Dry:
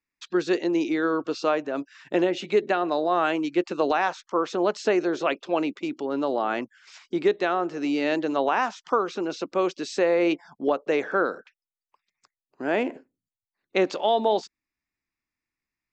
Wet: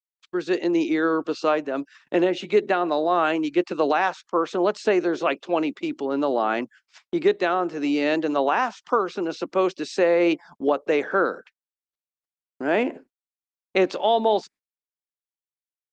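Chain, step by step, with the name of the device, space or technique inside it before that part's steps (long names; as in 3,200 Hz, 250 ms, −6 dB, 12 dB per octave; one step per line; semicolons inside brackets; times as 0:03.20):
video call (high-pass filter 130 Hz 24 dB per octave; automatic gain control gain up to 9 dB; noise gate −39 dBFS, range −51 dB; level −5.5 dB; Opus 32 kbit/s 48,000 Hz)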